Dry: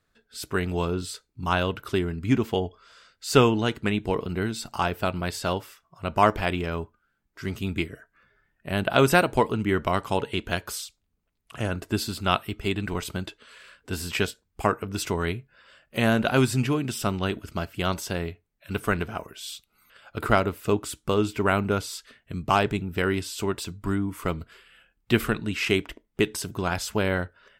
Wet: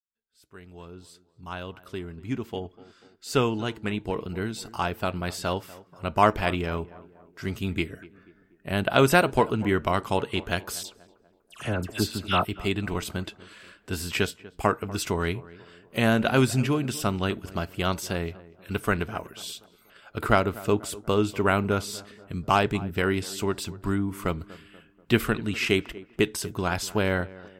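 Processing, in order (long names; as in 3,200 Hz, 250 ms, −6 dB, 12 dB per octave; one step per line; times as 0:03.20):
fade in at the beginning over 6.27 s
0:10.83–0:12.45: all-pass dispersion lows, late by 73 ms, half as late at 2,100 Hz
tape delay 243 ms, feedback 54%, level −17.5 dB, low-pass 1,300 Hz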